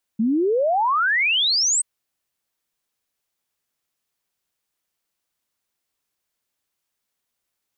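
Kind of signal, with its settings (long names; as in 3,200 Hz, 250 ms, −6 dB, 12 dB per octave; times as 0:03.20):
exponential sine sweep 210 Hz → 8,500 Hz 1.63 s −16.5 dBFS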